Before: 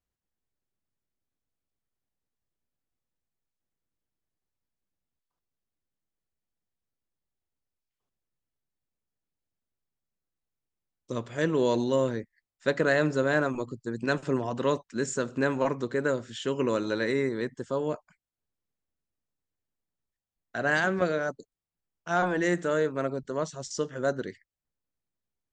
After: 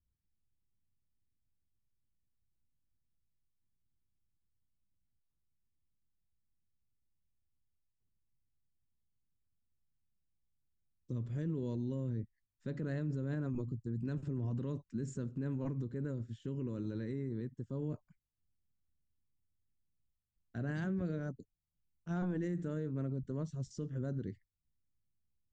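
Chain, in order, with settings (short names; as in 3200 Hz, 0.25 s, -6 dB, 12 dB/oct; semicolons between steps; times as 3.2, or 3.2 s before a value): EQ curve 110 Hz 0 dB, 300 Hz -11 dB, 670 Hz -26 dB; limiter -37 dBFS, peak gain reduction 11 dB; 15.24–17.82 upward expander 1.5:1, over -59 dBFS; gain +7.5 dB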